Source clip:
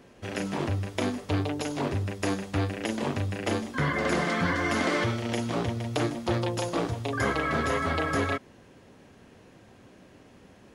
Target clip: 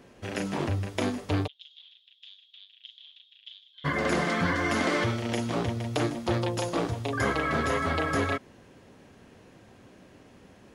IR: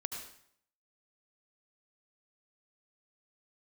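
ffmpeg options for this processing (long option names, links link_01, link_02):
-filter_complex "[0:a]asplit=3[link_01][link_02][link_03];[link_01]afade=type=out:start_time=1.46:duration=0.02[link_04];[link_02]asuperpass=centerf=3400:order=4:qfactor=5.6,afade=type=in:start_time=1.46:duration=0.02,afade=type=out:start_time=3.84:duration=0.02[link_05];[link_03]afade=type=in:start_time=3.84:duration=0.02[link_06];[link_04][link_05][link_06]amix=inputs=3:normalize=0"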